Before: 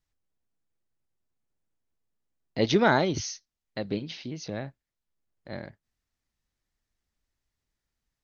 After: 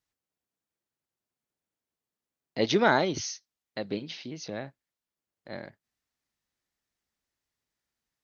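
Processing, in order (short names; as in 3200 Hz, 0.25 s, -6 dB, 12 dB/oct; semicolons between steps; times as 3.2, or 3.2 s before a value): HPF 230 Hz 6 dB/oct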